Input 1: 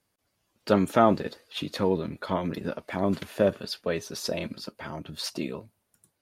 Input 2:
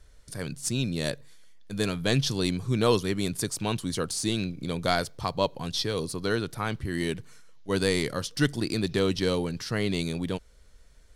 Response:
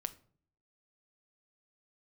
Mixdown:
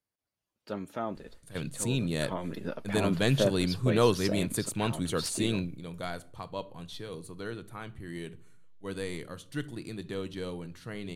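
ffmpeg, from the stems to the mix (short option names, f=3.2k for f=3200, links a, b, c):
-filter_complex "[0:a]volume=-5.5dB,afade=t=in:st=1.97:d=0.74:silence=0.281838,asplit=3[a][b][c];[b]volume=-12.5dB[d];[1:a]equalizer=f=5.2k:t=o:w=0.37:g=-15,adelay=1150,volume=-3.5dB,asplit=2[e][f];[f]volume=-8.5dB[g];[c]apad=whole_len=542823[h];[e][h]sidechaingate=range=-21dB:threshold=-59dB:ratio=16:detection=peak[i];[2:a]atrim=start_sample=2205[j];[d][g]amix=inputs=2:normalize=0[k];[k][j]afir=irnorm=-1:irlink=0[l];[a][i][l]amix=inputs=3:normalize=0"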